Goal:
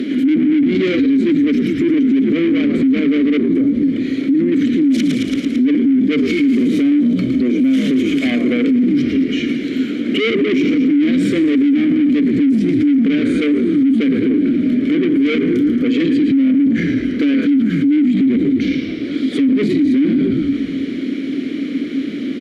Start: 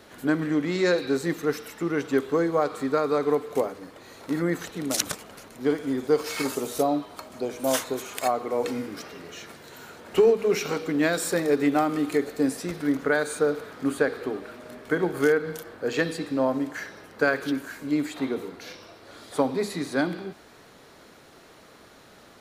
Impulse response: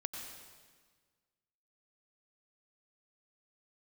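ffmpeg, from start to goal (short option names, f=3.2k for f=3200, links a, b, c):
-filter_complex "[0:a]acompressor=mode=upward:threshold=-41dB:ratio=2.5,highpass=82,asplit=3[a][b][c];[a]afade=t=out:st=3.39:d=0.02[d];[b]acompressor=threshold=-38dB:ratio=2,afade=t=in:st=3.39:d=0.02,afade=t=out:st=4.51:d=0.02[e];[c]afade=t=in:st=4.51:d=0.02[f];[d][e][f]amix=inputs=3:normalize=0,equalizer=f=270:w=0.61:g=12.5,asplit=2[g][h];[h]asplit=8[i][j][k][l][m][n][o][p];[i]adelay=111,afreqshift=-55,volume=-10dB[q];[j]adelay=222,afreqshift=-110,volume=-14dB[r];[k]adelay=333,afreqshift=-165,volume=-18dB[s];[l]adelay=444,afreqshift=-220,volume=-22dB[t];[m]adelay=555,afreqshift=-275,volume=-26.1dB[u];[n]adelay=666,afreqshift=-330,volume=-30.1dB[v];[o]adelay=777,afreqshift=-385,volume=-34.1dB[w];[p]adelay=888,afreqshift=-440,volume=-38.1dB[x];[q][r][s][t][u][v][w][x]amix=inputs=8:normalize=0[y];[g][y]amix=inputs=2:normalize=0,asoftclip=type=tanh:threshold=-21.5dB,asplit=3[z][aa][ab];[z]bandpass=f=270:t=q:w=8,volume=0dB[ac];[aa]bandpass=f=2.29k:t=q:w=8,volume=-6dB[ad];[ab]bandpass=f=3.01k:t=q:w=8,volume=-9dB[ae];[ac][ad][ae]amix=inputs=3:normalize=0,alimiter=level_in=35dB:limit=-1dB:release=50:level=0:latency=1,volume=-7.5dB"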